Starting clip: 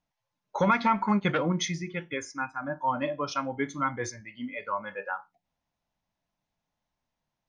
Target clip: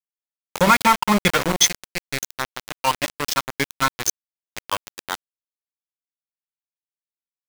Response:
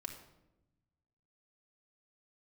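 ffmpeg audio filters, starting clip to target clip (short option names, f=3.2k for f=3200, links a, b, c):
-af "crystalizer=i=4:c=0,aeval=exprs='val(0)*gte(abs(val(0)),0.075)':c=same,volume=7dB"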